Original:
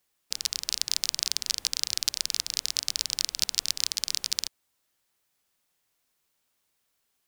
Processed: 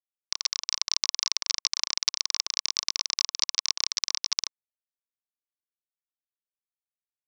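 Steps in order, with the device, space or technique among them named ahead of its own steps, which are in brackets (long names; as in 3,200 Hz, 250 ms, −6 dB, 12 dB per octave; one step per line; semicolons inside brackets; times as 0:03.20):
hand-held game console (bit reduction 4 bits; loudspeaker in its box 420–5,800 Hz, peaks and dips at 1,100 Hz +9 dB, 2,200 Hz +4 dB, 5,700 Hz +8 dB)
level −1 dB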